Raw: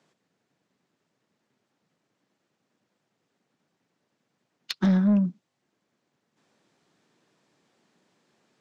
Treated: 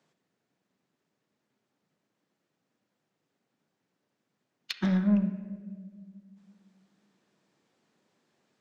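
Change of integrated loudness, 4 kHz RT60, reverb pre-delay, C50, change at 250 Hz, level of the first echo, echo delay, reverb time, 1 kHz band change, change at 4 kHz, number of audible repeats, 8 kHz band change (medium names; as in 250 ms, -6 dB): -5.0 dB, 1.1 s, 20 ms, 10.0 dB, -4.0 dB, no echo, no echo, 1.7 s, -4.0 dB, -3.0 dB, no echo, no reading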